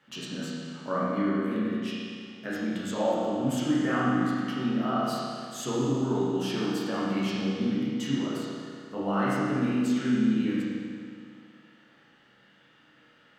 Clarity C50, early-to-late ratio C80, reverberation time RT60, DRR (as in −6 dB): −3.5 dB, −1.0 dB, 2.2 s, −9.0 dB